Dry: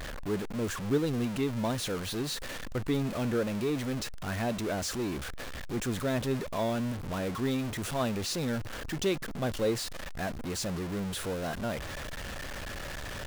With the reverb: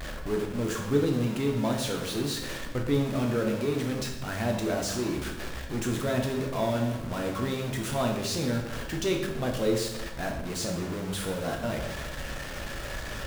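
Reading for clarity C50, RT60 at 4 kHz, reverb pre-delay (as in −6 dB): 5.5 dB, 0.75 s, 8 ms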